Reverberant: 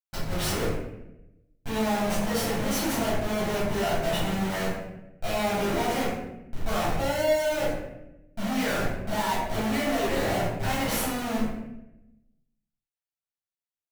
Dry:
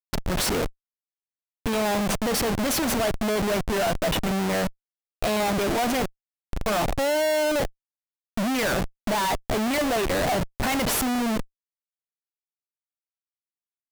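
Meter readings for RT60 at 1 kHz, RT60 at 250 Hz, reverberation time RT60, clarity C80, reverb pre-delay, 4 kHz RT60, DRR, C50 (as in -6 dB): 0.75 s, 1.3 s, 0.90 s, 3.5 dB, 6 ms, 0.60 s, -10.5 dB, 0.0 dB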